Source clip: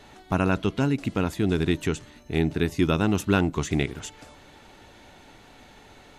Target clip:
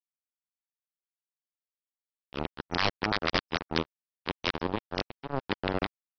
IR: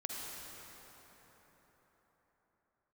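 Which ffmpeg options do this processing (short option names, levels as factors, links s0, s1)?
-filter_complex "[0:a]areverse,equalizer=f=125:t=o:w=1:g=-7,equalizer=f=2000:t=o:w=1:g=-11,equalizer=f=4000:t=o:w=1:g=-3,acrossover=split=580|1200[s0][s1][s2];[s1]volume=33.5,asoftclip=hard,volume=0.0299[s3];[s0][s3][s2]amix=inputs=3:normalize=0,acrusher=bits=2:mix=0:aa=0.5,aresample=11025,aeval=exprs='(mod(5.01*val(0)+1,2)-1)/5.01':c=same,aresample=44100" -ar 44100 -c:a ac3 -b:a 48k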